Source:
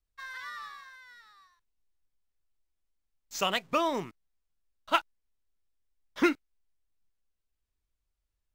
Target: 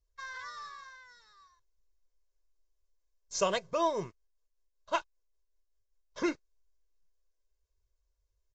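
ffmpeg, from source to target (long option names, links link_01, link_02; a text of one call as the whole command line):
ffmpeg -i in.wav -filter_complex "[0:a]firequalizer=gain_entry='entry(270,0);entry(1300,-8);entry(2700,-13);entry(5500,-2)':delay=0.05:min_phase=1,asplit=3[link_01][link_02][link_03];[link_01]afade=type=out:start_time=3.59:duration=0.02[link_04];[link_02]tremolo=f=5.2:d=0.51,afade=type=in:start_time=3.59:duration=0.02,afade=type=out:start_time=6.27:duration=0.02[link_05];[link_03]afade=type=in:start_time=6.27:duration=0.02[link_06];[link_04][link_05][link_06]amix=inputs=3:normalize=0,lowshelf=frequency=200:gain=-4,aecho=1:1:1.9:0.72,volume=3.5dB" -ar 16000 -c:a libvorbis -b:a 64k out.ogg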